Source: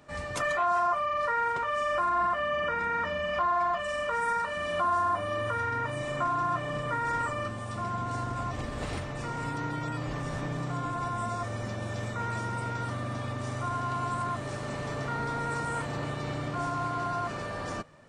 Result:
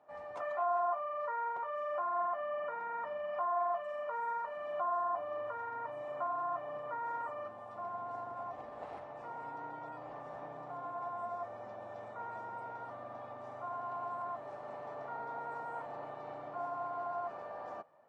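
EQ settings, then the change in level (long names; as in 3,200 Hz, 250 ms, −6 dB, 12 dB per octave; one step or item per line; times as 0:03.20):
resonant band-pass 760 Hz, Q 2.8
−1.5 dB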